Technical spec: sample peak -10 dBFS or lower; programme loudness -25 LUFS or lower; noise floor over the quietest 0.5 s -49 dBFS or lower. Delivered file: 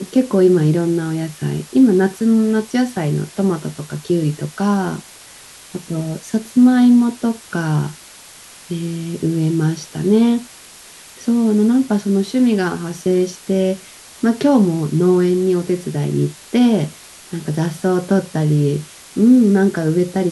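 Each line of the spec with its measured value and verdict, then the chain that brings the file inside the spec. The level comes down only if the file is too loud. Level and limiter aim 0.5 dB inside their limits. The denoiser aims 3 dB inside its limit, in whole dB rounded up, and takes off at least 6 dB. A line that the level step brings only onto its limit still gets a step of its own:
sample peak -2.5 dBFS: fail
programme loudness -17.0 LUFS: fail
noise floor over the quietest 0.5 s -41 dBFS: fail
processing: trim -8.5 dB

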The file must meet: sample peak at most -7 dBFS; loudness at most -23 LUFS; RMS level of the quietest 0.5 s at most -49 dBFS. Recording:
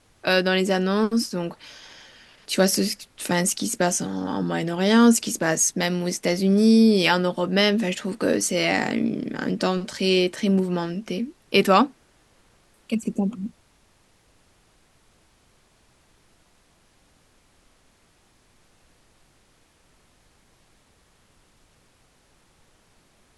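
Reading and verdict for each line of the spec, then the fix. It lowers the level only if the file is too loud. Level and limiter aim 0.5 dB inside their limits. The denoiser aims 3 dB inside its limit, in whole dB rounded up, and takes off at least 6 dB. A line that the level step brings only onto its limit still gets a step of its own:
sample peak -4.5 dBFS: fail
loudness -22.0 LUFS: fail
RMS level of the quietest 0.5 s -61 dBFS: pass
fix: trim -1.5 dB; peak limiter -7.5 dBFS

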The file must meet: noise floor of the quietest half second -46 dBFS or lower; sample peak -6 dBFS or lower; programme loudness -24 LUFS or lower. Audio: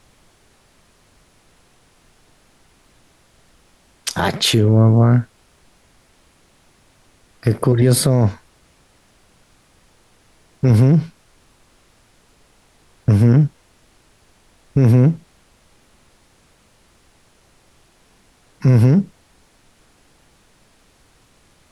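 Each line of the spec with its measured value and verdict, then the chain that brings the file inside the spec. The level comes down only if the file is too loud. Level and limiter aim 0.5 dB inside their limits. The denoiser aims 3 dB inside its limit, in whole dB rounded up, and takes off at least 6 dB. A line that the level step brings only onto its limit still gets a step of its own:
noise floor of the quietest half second -55 dBFS: pass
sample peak -5.0 dBFS: fail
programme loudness -15.5 LUFS: fail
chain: trim -9 dB

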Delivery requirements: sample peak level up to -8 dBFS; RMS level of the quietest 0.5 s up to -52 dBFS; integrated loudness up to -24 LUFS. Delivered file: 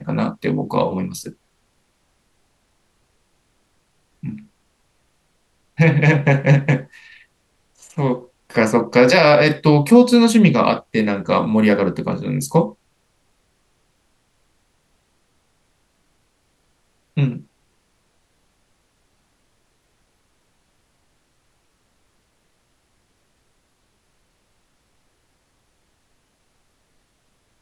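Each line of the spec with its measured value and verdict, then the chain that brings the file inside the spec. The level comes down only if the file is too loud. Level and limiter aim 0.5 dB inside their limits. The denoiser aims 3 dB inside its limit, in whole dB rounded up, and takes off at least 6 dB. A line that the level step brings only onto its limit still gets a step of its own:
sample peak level -1.5 dBFS: fail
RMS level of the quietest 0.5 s -64 dBFS: pass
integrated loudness -16.5 LUFS: fail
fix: trim -8 dB

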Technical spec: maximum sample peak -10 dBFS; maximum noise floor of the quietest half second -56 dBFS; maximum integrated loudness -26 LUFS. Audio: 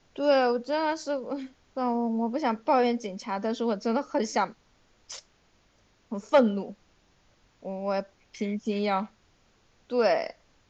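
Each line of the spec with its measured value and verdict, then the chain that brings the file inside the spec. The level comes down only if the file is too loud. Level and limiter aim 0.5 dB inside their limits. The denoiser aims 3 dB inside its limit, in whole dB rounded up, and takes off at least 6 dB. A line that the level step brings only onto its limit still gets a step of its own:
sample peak -9.5 dBFS: fail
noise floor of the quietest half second -65 dBFS: pass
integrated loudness -28.0 LUFS: pass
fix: peak limiter -10.5 dBFS

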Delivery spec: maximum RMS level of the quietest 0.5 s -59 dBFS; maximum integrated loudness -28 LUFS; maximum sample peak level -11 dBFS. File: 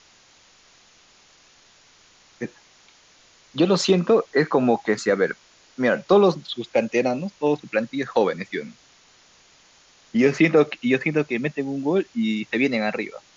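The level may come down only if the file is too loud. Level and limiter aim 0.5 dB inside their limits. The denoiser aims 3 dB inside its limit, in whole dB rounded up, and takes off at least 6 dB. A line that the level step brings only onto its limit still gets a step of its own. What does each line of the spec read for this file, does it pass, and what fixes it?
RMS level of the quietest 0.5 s -55 dBFS: fail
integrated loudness -22.0 LUFS: fail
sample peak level -5.5 dBFS: fail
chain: trim -6.5 dB

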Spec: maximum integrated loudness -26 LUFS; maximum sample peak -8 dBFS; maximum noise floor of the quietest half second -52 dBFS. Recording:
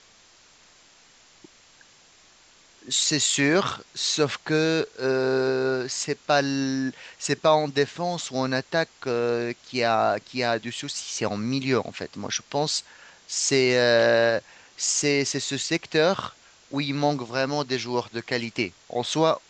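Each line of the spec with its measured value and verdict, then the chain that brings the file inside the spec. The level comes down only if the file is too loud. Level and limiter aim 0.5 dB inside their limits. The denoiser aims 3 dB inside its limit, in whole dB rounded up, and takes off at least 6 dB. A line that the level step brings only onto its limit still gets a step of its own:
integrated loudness -24.5 LUFS: fail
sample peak -7.0 dBFS: fail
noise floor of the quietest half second -55 dBFS: pass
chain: trim -2 dB

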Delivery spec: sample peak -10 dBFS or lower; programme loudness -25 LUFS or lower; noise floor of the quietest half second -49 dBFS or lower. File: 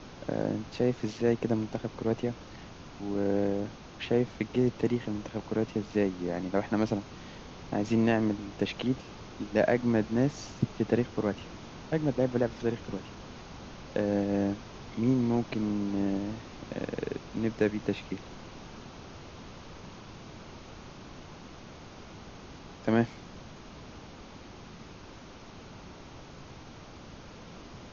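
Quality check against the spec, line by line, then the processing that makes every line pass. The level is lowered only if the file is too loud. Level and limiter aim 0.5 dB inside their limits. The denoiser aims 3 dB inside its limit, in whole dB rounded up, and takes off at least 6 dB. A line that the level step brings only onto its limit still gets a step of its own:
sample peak -11.5 dBFS: pass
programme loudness -31.0 LUFS: pass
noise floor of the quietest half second -48 dBFS: fail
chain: noise reduction 6 dB, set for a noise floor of -48 dBFS

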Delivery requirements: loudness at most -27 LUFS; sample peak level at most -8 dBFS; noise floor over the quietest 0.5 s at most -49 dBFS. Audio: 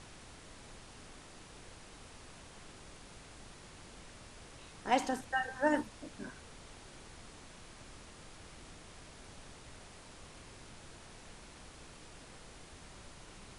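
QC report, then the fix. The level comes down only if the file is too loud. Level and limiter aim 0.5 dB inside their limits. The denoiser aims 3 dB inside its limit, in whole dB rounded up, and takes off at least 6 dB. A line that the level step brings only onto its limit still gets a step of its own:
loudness -43.5 LUFS: pass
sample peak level -14.5 dBFS: pass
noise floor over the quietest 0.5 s -53 dBFS: pass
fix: none needed

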